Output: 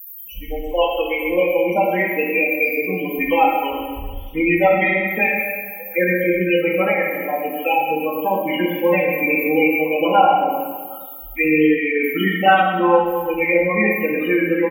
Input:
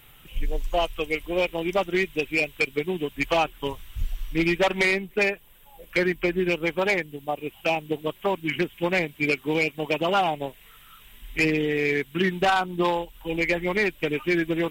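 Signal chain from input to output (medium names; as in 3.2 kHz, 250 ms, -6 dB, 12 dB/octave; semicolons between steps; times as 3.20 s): zero-crossing glitches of -28 dBFS; high-pass 68 Hz 12 dB/octave; comb 3.8 ms, depth 85%; loudest bins only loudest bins 16; plate-style reverb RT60 1.6 s, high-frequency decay 0.9×, DRR -3 dB; trim +1 dB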